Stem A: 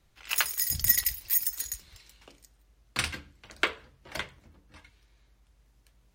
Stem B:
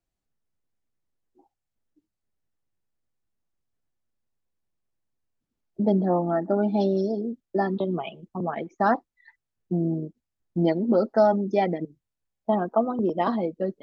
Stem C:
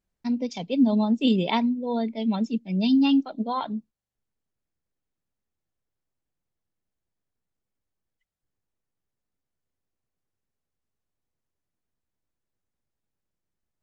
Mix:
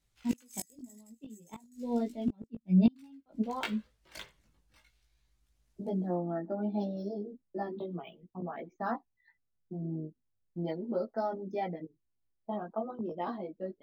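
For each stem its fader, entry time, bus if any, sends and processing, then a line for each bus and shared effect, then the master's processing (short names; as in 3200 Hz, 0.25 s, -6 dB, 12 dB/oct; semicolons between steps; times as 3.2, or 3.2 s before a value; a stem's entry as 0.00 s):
-10.5 dB, 0.00 s, no send, high shelf 3700 Hz +12 dB
-9.0 dB, 0.00 s, no send, dry
+1.0 dB, 0.00 s, no send, LPF 1400 Hz 6 dB/oct; low shelf 370 Hz +8.5 dB; upward expander 1.5:1, over -26 dBFS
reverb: off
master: flipped gate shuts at -14 dBFS, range -32 dB; chorus voices 2, 0.35 Hz, delay 18 ms, depth 1.6 ms; decimation joined by straight lines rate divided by 2×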